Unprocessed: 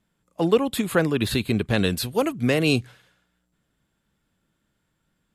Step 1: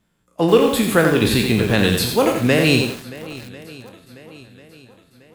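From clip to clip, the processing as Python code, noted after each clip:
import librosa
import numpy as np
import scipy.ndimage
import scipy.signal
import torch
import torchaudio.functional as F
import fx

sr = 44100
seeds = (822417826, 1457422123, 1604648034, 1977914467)

y = fx.spec_trails(x, sr, decay_s=0.42)
y = fx.echo_swing(y, sr, ms=1044, ratio=1.5, feedback_pct=41, wet_db=-19.0)
y = fx.echo_crushed(y, sr, ms=87, feedback_pct=35, bits=6, wet_db=-4.5)
y = y * 10.0 ** (4.0 / 20.0)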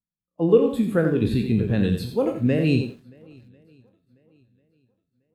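y = fx.low_shelf(x, sr, hz=320.0, db=5.5)
y = fx.spectral_expand(y, sr, expansion=1.5)
y = y * 10.0 ** (-5.5 / 20.0)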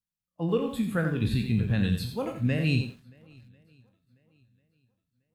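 y = fx.peak_eq(x, sr, hz=390.0, db=-13.0, octaves=1.5)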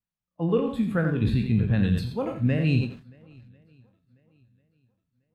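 y = fx.lowpass(x, sr, hz=1900.0, slope=6)
y = fx.sustainer(y, sr, db_per_s=140.0)
y = y * 10.0 ** (3.0 / 20.0)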